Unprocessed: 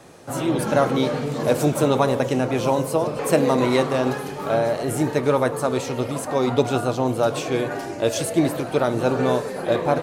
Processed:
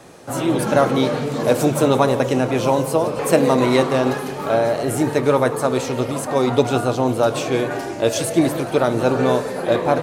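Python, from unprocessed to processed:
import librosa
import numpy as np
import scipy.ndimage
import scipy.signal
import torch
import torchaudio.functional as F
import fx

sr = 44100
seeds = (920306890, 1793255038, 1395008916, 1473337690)

y = fx.hum_notches(x, sr, base_hz=50, count=3)
y = fx.echo_feedback(y, sr, ms=176, feedback_pct=57, wet_db=-18.0)
y = y * librosa.db_to_amplitude(3.0)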